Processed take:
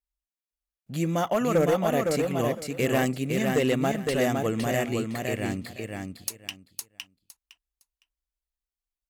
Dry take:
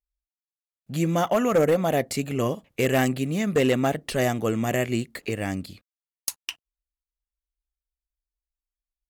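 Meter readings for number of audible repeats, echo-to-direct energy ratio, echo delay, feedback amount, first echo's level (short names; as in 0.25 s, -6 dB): 3, -4.0 dB, 0.51 s, 19%, -4.0 dB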